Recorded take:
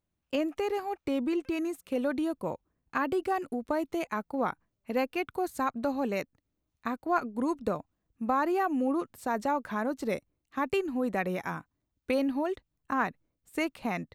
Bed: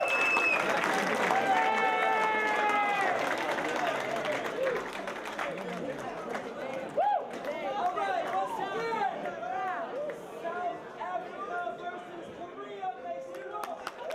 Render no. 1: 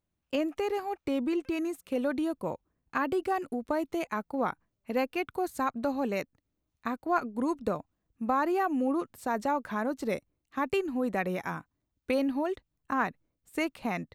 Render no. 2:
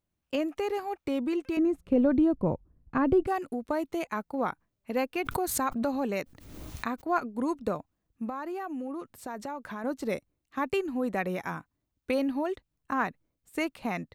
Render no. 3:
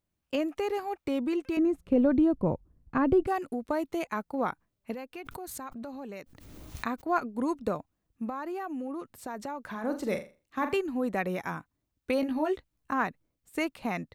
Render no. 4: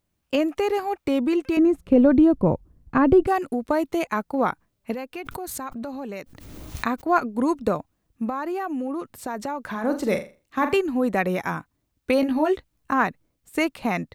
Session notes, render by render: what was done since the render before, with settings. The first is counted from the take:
no audible change
1.57–3.27 s: tilt EQ -4.5 dB/octave; 5.15–7.04 s: swell ahead of each attack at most 46 dB/s; 8.29–9.84 s: compression 3:1, threshold -35 dBFS
4.94–6.75 s: compression 2:1, threshold -46 dBFS; 9.68–10.77 s: flutter echo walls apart 7.1 m, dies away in 0.32 s; 12.21–12.91 s: doubling 16 ms -3 dB
trim +7.5 dB

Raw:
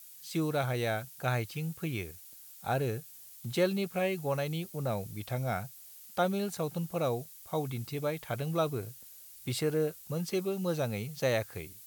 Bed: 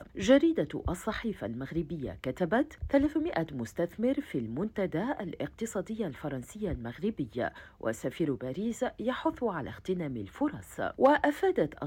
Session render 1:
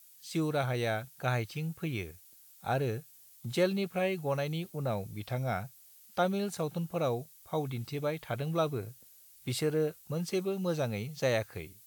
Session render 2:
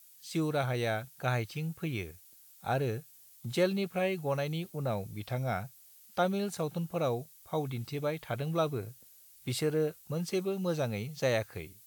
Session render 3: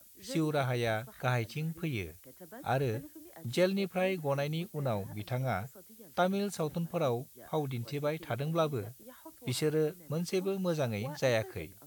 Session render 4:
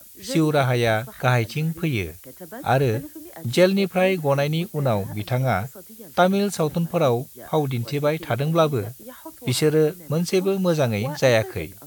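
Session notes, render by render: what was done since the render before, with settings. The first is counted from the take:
noise print and reduce 6 dB
no audible change
add bed -21.5 dB
trim +11.5 dB

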